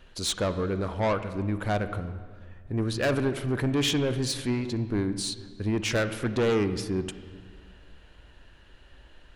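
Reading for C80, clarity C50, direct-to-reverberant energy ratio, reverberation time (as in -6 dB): 13.0 dB, 11.5 dB, 11.0 dB, 1.7 s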